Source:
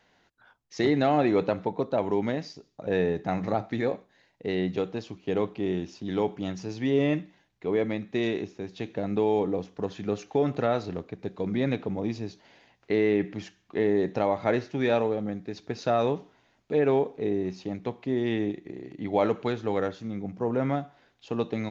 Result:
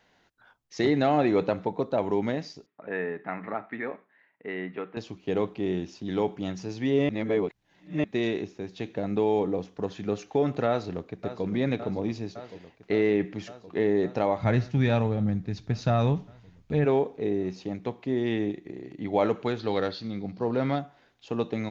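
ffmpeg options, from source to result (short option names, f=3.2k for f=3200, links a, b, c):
-filter_complex "[0:a]asettb=1/sr,asplit=3[a][b][c];[a]atrim=end=2.664[d];[b]atrim=start=2.66:end=4.97,asetpts=PTS-STARTPTS,afade=t=in:d=0.004:c=qsin,afade=t=out:st=2.306:d=0.004:c=qsin,highpass=310,equalizer=f=340:t=q:w=4:g=-6,equalizer=f=520:t=q:w=4:g=-9,equalizer=f=760:t=q:w=4:g=-6,equalizer=f=1.3k:t=q:w=4:g=3,equalizer=f=1.9k:t=q:w=4:g=4,lowpass=f=2.4k:w=0.5412,lowpass=f=2.4k:w=1.3066[e];[c]atrim=start=4.966[f];[d][e]acrossfade=d=0.004:c1=hsin:c2=qsin[g];[g][f]acrossfade=d=0.004:c1=qsin:c2=hsin,asplit=2[h][i];[i]afade=t=in:st=10.67:d=0.01,afade=t=out:st=11.45:d=0.01,aecho=0:1:560|1120|1680|2240|2800|3360|3920|4480|5040|5600|6160|6720:0.251189|0.200951|0.160761|0.128609|0.102887|0.0823095|0.0658476|0.0526781|0.0421425|0.033714|0.0269712|0.0215769[j];[h][j]amix=inputs=2:normalize=0,asplit=3[k][l][m];[k]afade=t=out:st=14.4:d=0.02[n];[l]asubboost=boost=8.5:cutoff=130,afade=t=in:st=14.4:d=0.02,afade=t=out:st=16.84:d=0.02[o];[m]afade=t=in:st=16.84:d=0.02[p];[n][o][p]amix=inputs=3:normalize=0,asettb=1/sr,asplit=3[q][r][s];[q]atrim=end=19.594[t];[r]atrim=start=19.59:end=20.79,asetpts=PTS-STARTPTS,afade=t=in:d=0.004:c=qsin,afade=t=out:st=1.196:d=0.004:c=qsin,lowpass=f=4.4k:t=q:w=7.6[u];[s]atrim=start=20.786[v];[t][u]acrossfade=d=0.004:c1=hsin:c2=qsin[w];[w][v]acrossfade=d=0.004:c1=qsin:c2=hsin,asplit=3[x][y][z];[x]atrim=end=7.092[aa];[y]atrim=start=7.088:end=8.042,asetpts=PTS-STARTPTS,areverse[ab];[z]atrim=start=8.038[ac];[aa][ab]acrossfade=d=0.004:c1=hsin:c2=hsin[ad];[ad][ac]acrossfade=d=0.004:c1=hsin:c2=hsin"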